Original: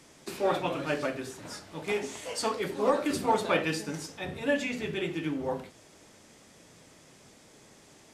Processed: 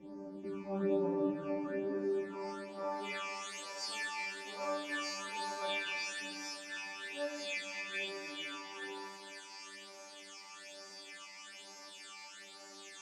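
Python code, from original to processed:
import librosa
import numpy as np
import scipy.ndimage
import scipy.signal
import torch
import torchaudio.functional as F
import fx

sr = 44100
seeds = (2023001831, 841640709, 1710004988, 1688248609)

p1 = fx.bin_compress(x, sr, power=0.6)
p2 = fx.filter_sweep_bandpass(p1, sr, from_hz=240.0, to_hz=3400.0, start_s=1.1, end_s=2.12, q=0.73)
p3 = fx.rider(p2, sr, range_db=4, speed_s=2.0)
p4 = p2 + (p3 * 10.0 ** (1.0 / 20.0))
p5 = fx.low_shelf(p4, sr, hz=83.0, db=11.5)
p6 = fx.resonator_bank(p5, sr, root=55, chord='fifth', decay_s=0.6)
p7 = fx.phaser_stages(p6, sr, stages=8, low_hz=450.0, high_hz=3200.0, hz=1.8, feedback_pct=35)
p8 = fx.echo_banded(p7, sr, ms=162, feedback_pct=72, hz=1400.0, wet_db=-16)
p9 = fx.stretch_vocoder(p8, sr, factor=1.6)
p10 = fx.echo_heads(p9, sr, ms=150, heads='second and third', feedback_pct=43, wet_db=-14)
y = p10 * 10.0 ** (7.0 / 20.0)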